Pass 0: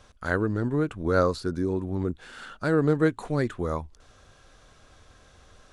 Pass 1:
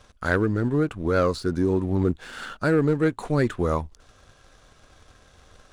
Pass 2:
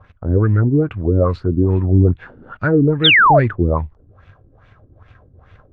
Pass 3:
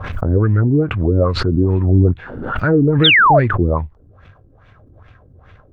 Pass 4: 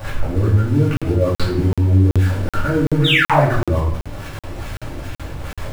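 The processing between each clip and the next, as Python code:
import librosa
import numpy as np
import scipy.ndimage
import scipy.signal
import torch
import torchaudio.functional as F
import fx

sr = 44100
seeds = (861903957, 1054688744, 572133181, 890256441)

y1 = fx.leveller(x, sr, passes=1)
y1 = fx.rider(y1, sr, range_db=10, speed_s=0.5)
y2 = fx.filter_lfo_lowpass(y1, sr, shape='sine', hz=2.4, low_hz=300.0, high_hz=2500.0, q=2.7)
y2 = fx.peak_eq(y2, sr, hz=100.0, db=14.0, octaves=1.2)
y2 = fx.spec_paint(y2, sr, seeds[0], shape='fall', start_s=3.04, length_s=0.36, low_hz=520.0, high_hz=3900.0, level_db=-10.0)
y3 = fx.pre_swell(y2, sr, db_per_s=47.0)
y4 = y3 + 0.5 * 10.0 ** (-20.0 / 20.0) * np.sign(y3)
y4 = fx.room_shoebox(y4, sr, seeds[1], volume_m3=140.0, walls='mixed', distance_m=2.4)
y4 = fx.buffer_crackle(y4, sr, first_s=0.97, period_s=0.38, block=2048, kind='zero')
y4 = y4 * 10.0 ** (-14.5 / 20.0)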